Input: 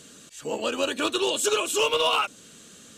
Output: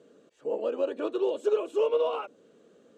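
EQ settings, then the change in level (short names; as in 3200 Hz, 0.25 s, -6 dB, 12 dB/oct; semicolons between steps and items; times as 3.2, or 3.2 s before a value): band-pass 470 Hz, Q 2.1; +1.5 dB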